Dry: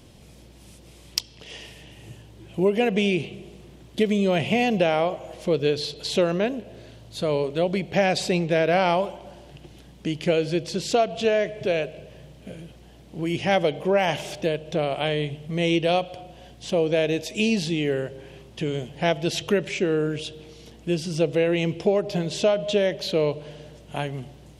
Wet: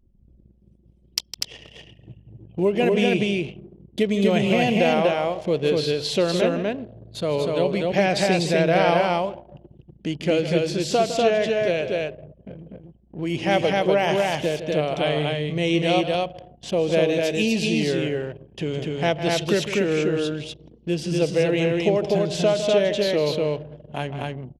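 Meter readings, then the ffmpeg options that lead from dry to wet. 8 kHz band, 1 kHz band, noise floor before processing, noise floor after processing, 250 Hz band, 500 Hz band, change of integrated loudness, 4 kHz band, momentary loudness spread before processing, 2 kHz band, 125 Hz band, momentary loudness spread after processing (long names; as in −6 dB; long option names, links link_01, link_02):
+2.0 dB, +2.5 dB, −49 dBFS, −56 dBFS, +2.5 dB, +2.5 dB, +2.0 dB, +2.5 dB, 17 LU, +2.5 dB, +2.5 dB, 12 LU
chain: -af "aecho=1:1:157.4|244.9:0.282|0.794,anlmdn=1"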